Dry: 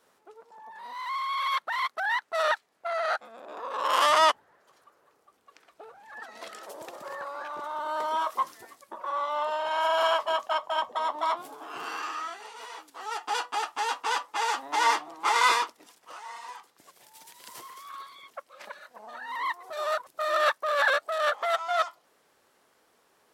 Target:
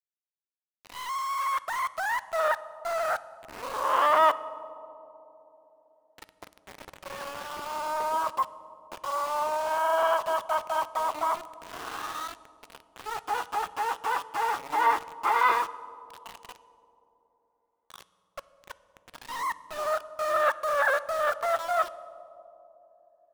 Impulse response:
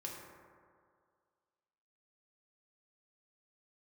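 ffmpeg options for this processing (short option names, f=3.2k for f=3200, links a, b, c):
-filter_complex "[0:a]lowpass=1.7k,aeval=exprs='val(0)*gte(abs(val(0)),0.015)':c=same,asplit=2[a][b];[1:a]atrim=start_sample=2205,asetrate=23373,aresample=44100,highshelf=f=11k:g=7[c];[b][c]afir=irnorm=-1:irlink=0,volume=-14.5dB[d];[a][d]amix=inputs=2:normalize=0"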